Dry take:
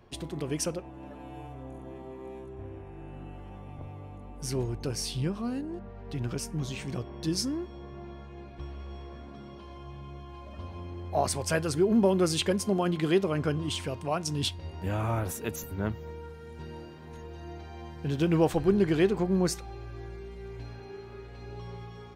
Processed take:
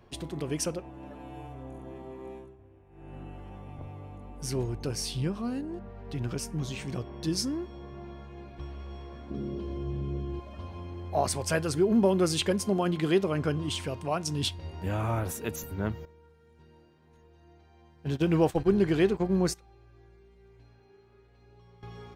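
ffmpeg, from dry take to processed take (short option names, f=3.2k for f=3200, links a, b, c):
-filter_complex "[0:a]asettb=1/sr,asplit=3[a][b][c];[a]atrim=end=9.304[d];[b]atrim=start=9.3:end=10.4,asetpts=PTS-STARTPTS,afade=t=in:d=0.004:c=qsin,afade=t=out:st=1.096:d=0.004:c=qsin,lowshelf=f=580:t=q:w=1.5:g=10[e];[c]atrim=start=10.396[f];[d][e]acrossfade=d=0.004:c1=hsin:c2=qsin[g];[g][f]acrossfade=d=0.004:c1=qsin:c2=hsin,asettb=1/sr,asplit=3[h][i][j];[h]atrim=end=16.054[k];[i]atrim=start=16.05:end=21.83,asetpts=PTS-STARTPTS,afade=t=in:d=0.004:c=qsin,afade=t=out:st=5.776:d=0.004:c=qsin,agate=range=-15dB:threshold=-32dB:ratio=16:release=100:detection=peak[l];[j]atrim=start=21.826[m];[k][l]acrossfade=d=0.004:c1=hsin:c2=qsin[n];[n][m]acrossfade=d=0.004:c1=qsin:c2=hsin,asplit=3[o][p][q];[o]atrim=end=2.58,asetpts=PTS-STARTPTS,afade=t=out:st=2.32:d=0.26:silence=0.199526[r];[p]atrim=start=2.58:end=2.89,asetpts=PTS-STARTPTS,volume=-14dB[s];[q]atrim=start=2.89,asetpts=PTS-STARTPTS,afade=t=in:d=0.26:silence=0.199526[t];[r][s][t]concat=n=3:v=0:a=1"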